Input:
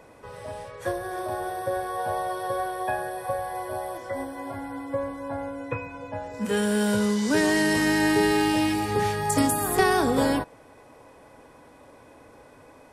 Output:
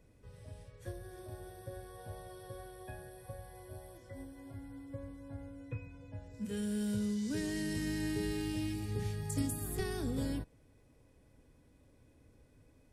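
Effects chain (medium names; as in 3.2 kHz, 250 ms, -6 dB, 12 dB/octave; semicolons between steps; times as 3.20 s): amplifier tone stack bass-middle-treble 10-0-1; trim +6.5 dB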